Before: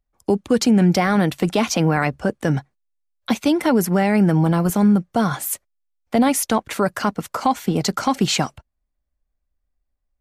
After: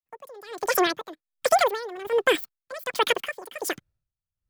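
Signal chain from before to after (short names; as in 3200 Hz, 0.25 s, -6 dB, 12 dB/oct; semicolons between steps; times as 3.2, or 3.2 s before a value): opening faded in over 2.23 s; wide varispeed 2.27×; dB-linear tremolo 1.3 Hz, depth 21 dB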